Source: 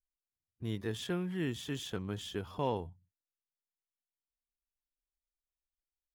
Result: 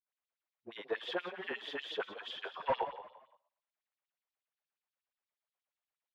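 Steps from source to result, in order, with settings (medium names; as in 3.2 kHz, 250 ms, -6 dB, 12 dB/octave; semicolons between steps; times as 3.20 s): bass shelf 230 Hz -7.5 dB; de-hum 79.36 Hz, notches 22; phase dispersion highs, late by 68 ms, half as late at 370 Hz; saturation -30 dBFS, distortion -18 dB; LFO high-pass sine 8.4 Hz 530–4500 Hz; hard clipper -31.5 dBFS, distortion -14 dB; distance through air 390 m; frequency-shifting echo 172 ms, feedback 31%, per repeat +42 Hz, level -13 dB; trim +7 dB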